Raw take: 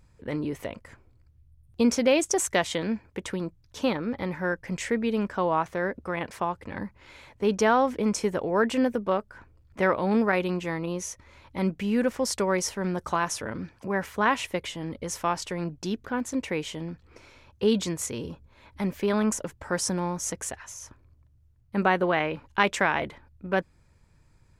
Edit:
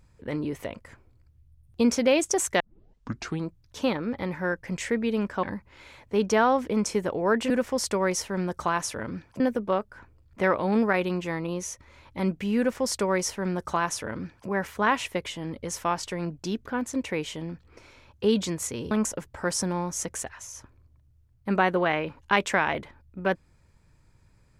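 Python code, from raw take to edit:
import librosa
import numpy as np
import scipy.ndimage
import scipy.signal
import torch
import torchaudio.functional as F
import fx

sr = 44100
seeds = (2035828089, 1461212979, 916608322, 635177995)

y = fx.edit(x, sr, fx.tape_start(start_s=2.6, length_s=0.87),
    fx.cut(start_s=5.43, length_s=1.29),
    fx.duplicate(start_s=11.97, length_s=1.9, to_s=8.79),
    fx.cut(start_s=18.3, length_s=0.88), tone=tone)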